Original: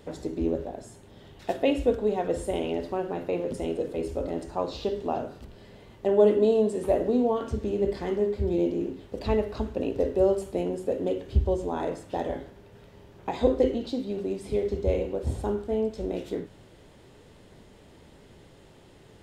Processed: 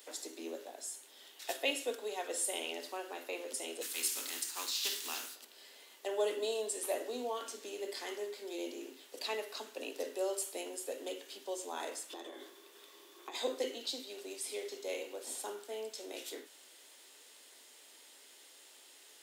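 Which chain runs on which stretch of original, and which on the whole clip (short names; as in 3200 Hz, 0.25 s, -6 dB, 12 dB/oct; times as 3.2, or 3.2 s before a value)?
3.81–5.34 spectral contrast lowered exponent 0.69 + bell 610 Hz -14 dB 1 oct + mismatched tape noise reduction decoder only
12.1–13.35 compressor, threshold -35 dBFS + small resonant body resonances 350/1100/3500 Hz, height 15 dB, ringing for 50 ms
whole clip: steep high-pass 240 Hz 72 dB/oct; differentiator; gain +9.5 dB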